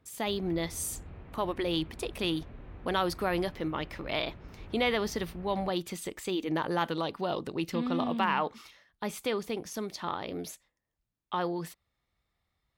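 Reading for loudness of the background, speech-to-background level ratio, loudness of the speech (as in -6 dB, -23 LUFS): -49.5 LUFS, 16.5 dB, -33.0 LUFS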